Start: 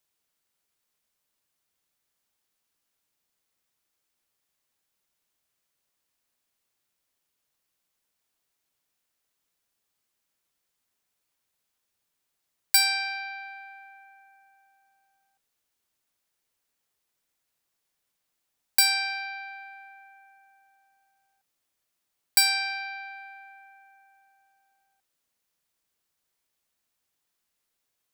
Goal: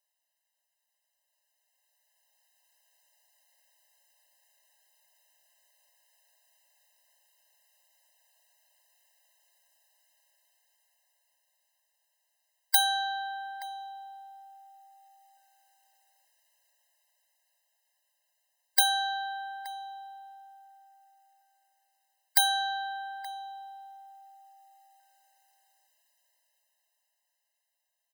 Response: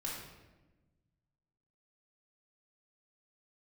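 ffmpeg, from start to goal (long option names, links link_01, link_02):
-filter_complex "[0:a]dynaudnorm=framelen=140:gausssize=31:maxgain=14dB,asplit=2[link_01][link_02];[link_02]adelay=874.6,volume=-11dB,highshelf=frequency=4000:gain=-19.7[link_03];[link_01][link_03]amix=inputs=2:normalize=0,afftfilt=real='re*eq(mod(floor(b*sr/1024/530),2),1)':imag='im*eq(mod(floor(b*sr/1024/530),2),1)':win_size=1024:overlap=0.75"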